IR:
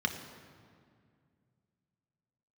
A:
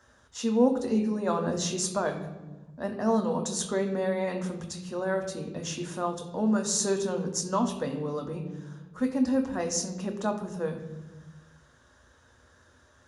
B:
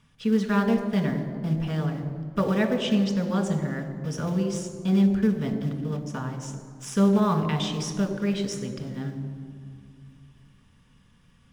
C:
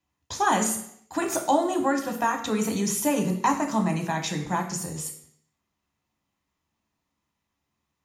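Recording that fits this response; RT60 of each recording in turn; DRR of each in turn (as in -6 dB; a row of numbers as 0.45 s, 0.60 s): B; 1.2 s, 2.1 s, 0.70 s; 4.0 dB, 4.5 dB, 3.0 dB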